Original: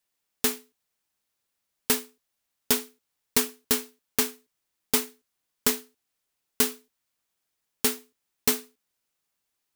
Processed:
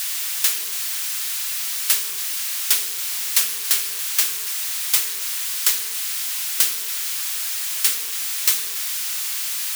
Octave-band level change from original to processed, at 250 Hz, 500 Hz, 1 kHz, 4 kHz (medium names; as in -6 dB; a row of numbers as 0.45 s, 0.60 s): under -20 dB, -14.0 dB, +1.0 dB, +9.5 dB